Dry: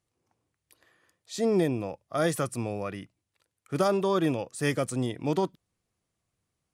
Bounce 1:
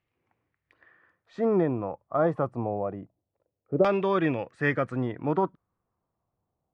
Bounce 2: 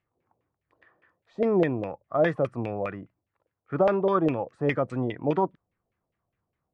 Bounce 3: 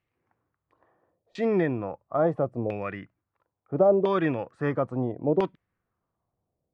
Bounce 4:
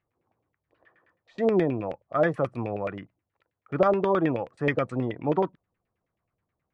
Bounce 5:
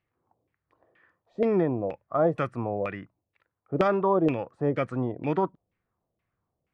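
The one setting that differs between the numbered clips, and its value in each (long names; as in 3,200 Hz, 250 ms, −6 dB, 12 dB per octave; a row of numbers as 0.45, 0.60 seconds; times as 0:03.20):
auto-filter low-pass, speed: 0.26, 4.9, 0.74, 9.4, 2.1 Hertz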